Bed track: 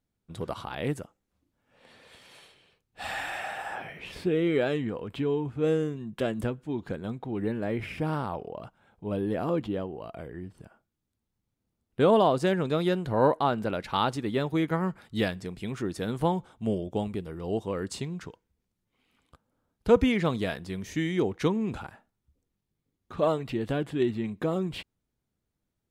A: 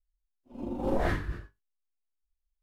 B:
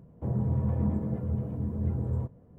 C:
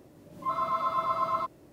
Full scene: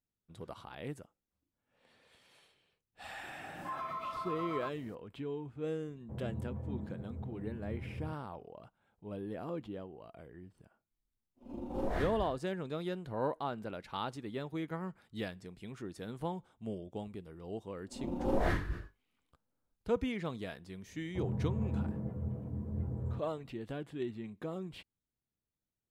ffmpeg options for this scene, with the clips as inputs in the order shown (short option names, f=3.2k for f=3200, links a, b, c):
-filter_complex "[2:a]asplit=2[a][b];[1:a]asplit=2[c][d];[0:a]volume=-12dB[e];[3:a]acompressor=threshold=-35dB:ratio=6:attack=3.2:release=140:knee=1:detection=peak,atrim=end=1.72,asetpts=PTS-STARTPTS,volume=-2dB,afade=t=in:d=0.004:c=hsin,afade=t=out:st=1.716:d=0.004:c=hsin,adelay=3230[f];[a]atrim=end=2.58,asetpts=PTS-STARTPTS,volume=-13dB,afade=t=in:d=0.004:c=hsin,afade=t=out:st=2.576:d=0.004:c=hsin,adelay=5870[g];[c]atrim=end=2.62,asetpts=PTS-STARTPTS,volume=-7dB,afade=t=in:d=0.004:c=hsin,afade=t=out:st=2.616:d=0.004:c=hsin,adelay=10910[h];[d]atrim=end=2.62,asetpts=PTS-STARTPTS,volume=-2.5dB,afade=t=in:d=0.004:c=hsin,afade=t=out:st=2.616:d=0.004:c=hsin,adelay=17410[i];[b]atrim=end=2.58,asetpts=PTS-STARTPTS,volume=-7.5dB,afade=t=in:d=0.004:c=hsin,afade=t=out:st=2.576:d=0.004:c=hsin,adelay=20930[j];[e][f][g][h][i][j]amix=inputs=6:normalize=0"